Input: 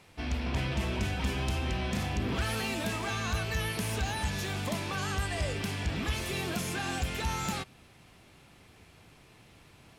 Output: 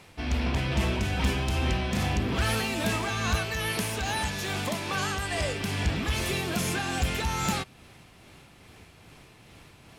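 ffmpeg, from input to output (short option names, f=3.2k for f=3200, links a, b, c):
-filter_complex "[0:a]asettb=1/sr,asplit=3[a][b][c];[a]atrim=end=3.354[d];[b]atrim=start=3.35:end=5.61,asetpts=PTS-STARTPTS,afade=t=in:d=0.004:c=qsin,afade=t=out:st=2.256:d=0.004:c=qsin,lowshelf=f=150:g=-7.5[e];[c]atrim=start=5.606[f];[d][e]acrossfade=d=0.004:c1=hsin:c2=qsin[g];[g][f]acrossfade=d=0.004:c1=qsin:c2=hsin,aeval=exprs='0.0631*(abs(mod(val(0)/0.0631+3,4)-2)-1)':c=same,tremolo=f=2.4:d=0.31,volume=6dB"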